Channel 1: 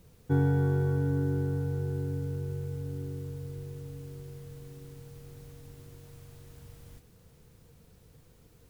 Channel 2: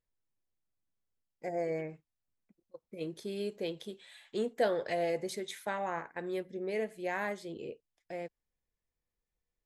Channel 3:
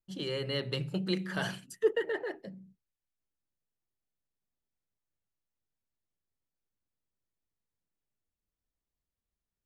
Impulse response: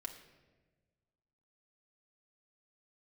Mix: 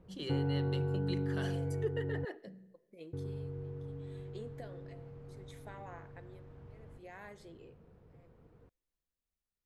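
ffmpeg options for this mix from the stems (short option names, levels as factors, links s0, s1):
-filter_complex "[0:a]lowpass=1300,lowshelf=f=150:g=-6,volume=1.12,asplit=3[s0][s1][s2];[s0]atrim=end=2.25,asetpts=PTS-STARTPTS,afade=t=out:st=2.246:d=0.004:c=hsin[s3];[s1]atrim=start=2.25:end=3.13,asetpts=PTS-STARTPTS,volume=0[s4];[s2]atrim=start=3.13,asetpts=PTS-STARTPTS,afade=t=in:d=0.004:c=hsin[s5];[s3][s4][s5]concat=n=3:v=0:a=1[s6];[1:a]acompressor=threshold=0.02:ratio=6,tremolo=f=0.68:d=0.94,volume=0.237,asplit=2[s7][s8];[s8]volume=0.596[s9];[2:a]volume=0.473,asplit=2[s10][s11];[s11]volume=0.398[s12];[3:a]atrim=start_sample=2205[s13];[s9][s12]amix=inputs=2:normalize=0[s14];[s14][s13]afir=irnorm=-1:irlink=0[s15];[s6][s7][s10][s15]amix=inputs=4:normalize=0,acompressor=threshold=0.02:ratio=2"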